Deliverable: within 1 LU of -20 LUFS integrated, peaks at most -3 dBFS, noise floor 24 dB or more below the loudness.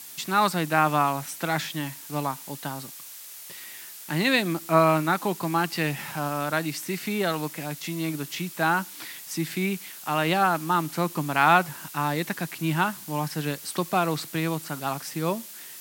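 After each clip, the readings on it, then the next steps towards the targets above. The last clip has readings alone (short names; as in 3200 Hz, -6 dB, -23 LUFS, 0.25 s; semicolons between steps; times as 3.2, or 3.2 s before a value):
noise floor -43 dBFS; noise floor target -50 dBFS; loudness -26.0 LUFS; peak -5.0 dBFS; loudness target -20.0 LUFS
-> denoiser 7 dB, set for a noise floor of -43 dBFS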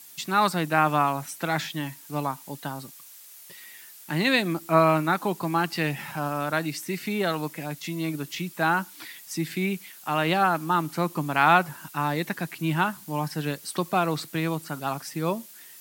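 noise floor -48 dBFS; noise floor target -51 dBFS
-> denoiser 6 dB, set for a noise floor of -48 dBFS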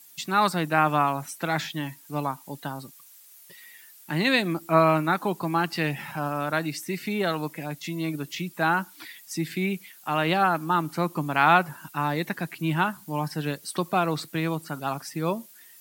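noise floor -51 dBFS; loudness -26.5 LUFS; peak -5.0 dBFS; loudness target -20.0 LUFS
-> gain +6.5 dB; limiter -3 dBFS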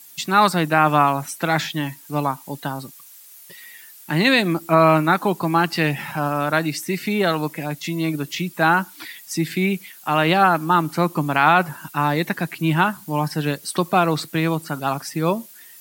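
loudness -20.5 LUFS; peak -3.0 dBFS; noise floor -45 dBFS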